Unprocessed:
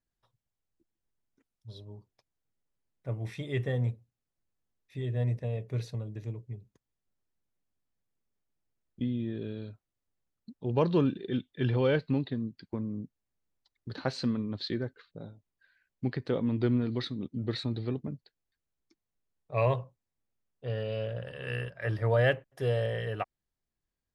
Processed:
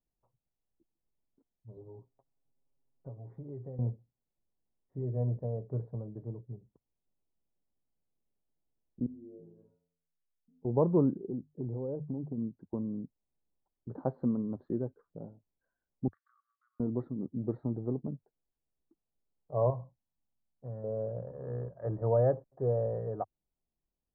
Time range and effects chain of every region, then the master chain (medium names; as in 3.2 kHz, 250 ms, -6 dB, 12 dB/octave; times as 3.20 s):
1.76–3.79 s: comb 7.4 ms, depth 93% + compression, threshold -40 dBFS
9.06–10.65 s: low-pass that closes with the level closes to 840 Hz, closed at -31.5 dBFS + inharmonic resonator 82 Hz, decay 0.83 s, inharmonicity 0.008 + de-hum 48.76 Hz, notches 28
11.17–12.38 s: hum notches 50/100/150 Hz + compression 12:1, threshold -30 dBFS + Gaussian low-pass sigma 9.1 samples
16.08–16.80 s: compression, threshold -36 dBFS + brick-wall FIR high-pass 1.1 kHz + hard clipper -32 dBFS
19.70–20.84 s: compression 1.5:1, threshold -36 dBFS + peaking EQ 430 Hz -12 dB 0.62 oct
whole clip: inverse Chebyshev low-pass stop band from 2.4 kHz, stop band 50 dB; peaking EQ 98 Hz -13 dB 0.25 oct